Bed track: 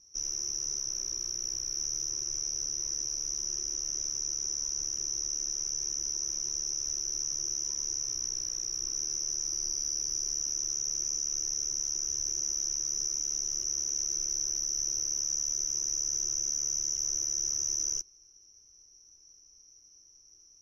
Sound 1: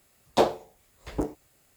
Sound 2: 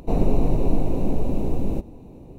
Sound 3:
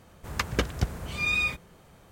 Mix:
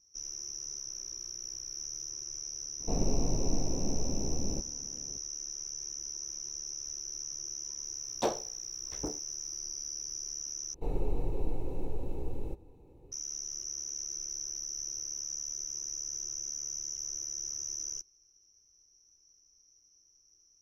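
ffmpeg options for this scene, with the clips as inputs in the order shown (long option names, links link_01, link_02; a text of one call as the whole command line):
ffmpeg -i bed.wav -i cue0.wav -i cue1.wav -filter_complex "[2:a]asplit=2[link_01][link_02];[0:a]volume=-7dB[link_03];[link_02]aecho=1:1:2.3:0.61[link_04];[link_03]asplit=2[link_05][link_06];[link_05]atrim=end=10.744[link_07];[link_04]atrim=end=2.38,asetpts=PTS-STARTPTS,volume=-15dB[link_08];[link_06]atrim=start=13.116[link_09];[link_01]atrim=end=2.38,asetpts=PTS-STARTPTS,volume=-10.5dB,afade=type=in:duration=0.004:curve=hsin,afade=type=out:start_time=2.376:duration=0.004:curve=hsin,adelay=2800[link_10];[1:a]atrim=end=1.76,asetpts=PTS-STARTPTS,volume=-9.5dB,afade=type=in:duration=0.004:curve=hsin,afade=type=out:start_time=1.756:duration=0.004:curve=hsin,adelay=7850[link_11];[link_07][link_08]acrossfade=duration=0.004:curve1=hsin:curve2=hsin[link_12];[link_12][link_09]acrossfade=duration=0.004:curve1=hsin:curve2=hsin[link_13];[link_13][link_10][link_11]amix=inputs=3:normalize=0" out.wav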